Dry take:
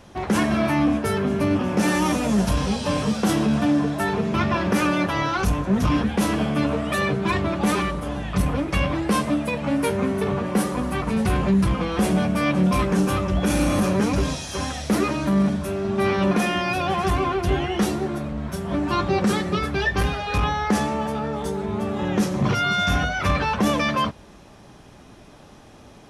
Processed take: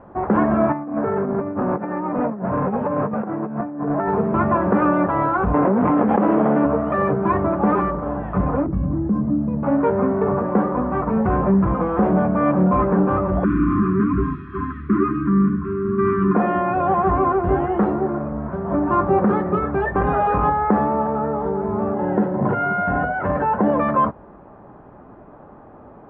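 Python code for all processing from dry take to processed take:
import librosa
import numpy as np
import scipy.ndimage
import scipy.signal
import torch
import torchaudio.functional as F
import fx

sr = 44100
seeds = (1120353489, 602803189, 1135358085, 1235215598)

y = fx.chain(x, sr, fx.cheby1_bandpass(low_hz=110.0, high_hz=2400.0, order=3),
    fx.over_compress(threshold_db=-25.0, ratio=-0.5),
    fx.overload_stage(gain_db=20.5), at=(0.72, 4.08))
y = fx.chain(y, sr, fx.lower_of_two(delay_ms=0.32),
    fx.bandpass_edges(low_hz=220.0, high_hz=2800.0),
    fx.env_flatten(amount_pct=100), at=(5.54, 6.65))
y = fx.chain(y, sr, fx.curve_eq(hz=(220.0, 330.0, 530.0, 3100.0, 5800.0), db=(0, -8, -19, -25, 3)),
    fx.env_flatten(amount_pct=50), at=(8.66, 9.63))
y = fx.chain(y, sr, fx.brickwall_bandstop(low_hz=410.0, high_hz=1000.0),
    fx.bass_treble(bass_db=1, treble_db=-8), at=(13.44, 16.35))
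y = fx.chain(y, sr, fx.peak_eq(hz=78.0, db=-8.0, octaves=0.55),
    fx.env_flatten(amount_pct=70), at=(19.95, 20.5))
y = fx.chain(y, sr, fx.notch_comb(f0_hz=1200.0),
    fx.resample_bad(factor=4, down='filtered', up='hold'), at=(21.94, 23.77))
y = scipy.signal.sosfilt(scipy.signal.butter(4, 1300.0, 'lowpass', fs=sr, output='sos'), y)
y = fx.low_shelf(y, sr, hz=210.0, db=-9.0)
y = F.gain(torch.from_numpy(y), 7.0).numpy()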